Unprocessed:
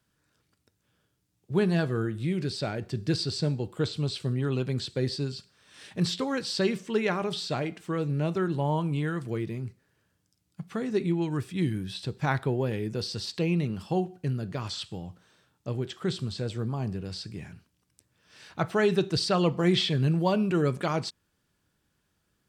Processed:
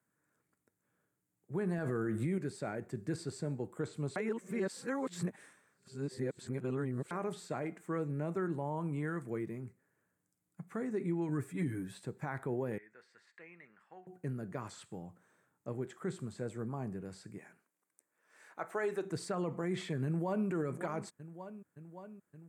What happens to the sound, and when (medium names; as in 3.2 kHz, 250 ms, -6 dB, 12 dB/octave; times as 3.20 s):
1.78–2.38 s: gain +10 dB
4.16–7.11 s: reverse
11.28–11.99 s: comb 7.1 ms, depth 91%
12.78–14.07 s: band-pass filter 1.8 kHz, Q 3.2
17.38–19.05 s: high-pass 400 Hz
20.05–20.48 s: echo throw 570 ms, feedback 75%, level -14 dB
whole clip: high-pass 160 Hz 12 dB/octave; high-order bell 3.9 kHz -15.5 dB 1.3 oct; peak limiter -21 dBFS; trim -5.5 dB